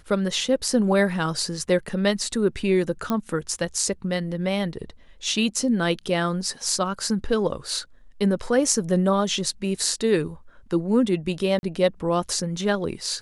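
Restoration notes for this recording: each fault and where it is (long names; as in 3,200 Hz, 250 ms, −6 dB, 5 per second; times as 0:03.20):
0:03.10: click −12 dBFS
0:11.59–0:11.63: drop-out 41 ms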